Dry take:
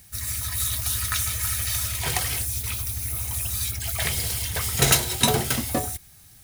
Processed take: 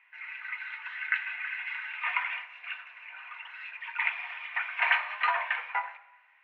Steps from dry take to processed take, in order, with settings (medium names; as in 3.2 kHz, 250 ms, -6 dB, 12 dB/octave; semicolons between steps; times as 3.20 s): reverberation RT60 1.0 s, pre-delay 3 ms, DRR 10 dB; mistuned SSB +250 Hz 570–2100 Hz; trim +4.5 dB